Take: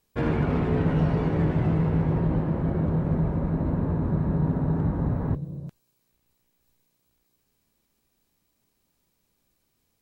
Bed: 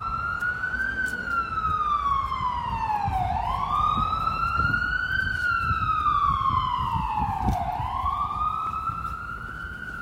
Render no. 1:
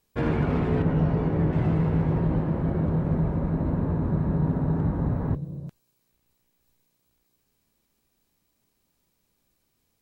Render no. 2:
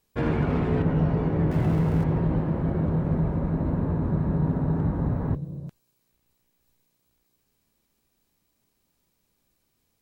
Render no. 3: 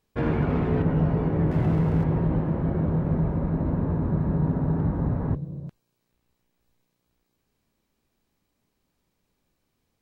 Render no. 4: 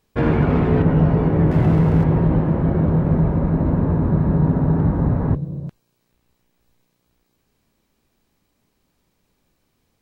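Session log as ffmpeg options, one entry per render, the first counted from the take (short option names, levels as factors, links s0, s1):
-filter_complex "[0:a]asettb=1/sr,asplit=3[s0][s1][s2];[s0]atrim=end=0.824[s3];[s1]atrim=start=0.82:end=1.53,asetpts=PTS-STARTPTS,afade=t=in:d=0.004:c=qsin,afade=t=out:st=0.706:d=0.004:c=qsin,highshelf=f=2100:g=-8.5[s4];[s2]atrim=start=1.526[s5];[s3][s4]acrossfade=d=0.004:c1=hsin:c2=qsin[s6];[s6][s5]acrossfade=d=0.004:c1=qsin:c2=hsin"
-filter_complex "[0:a]asettb=1/sr,asplit=3[s0][s1][s2];[s0]atrim=end=1.514[s3];[s1]atrim=start=1.51:end=2.04,asetpts=PTS-STARTPTS,afade=t=in:d=0.004:c=qsin,afade=t=out:st=0.526:d=0.004:c=qsin,aeval=exprs='val(0)+0.5*0.0126*sgn(val(0))':c=same[s4];[s2]atrim=start=2.036[s5];[s3][s4]acrossfade=d=0.004:c1=hsin:c2=qsin[s6];[s6][s5]acrossfade=d=0.004:c1=qsin:c2=hsin"
-af "aemphasis=mode=reproduction:type=cd"
-af "volume=2.24"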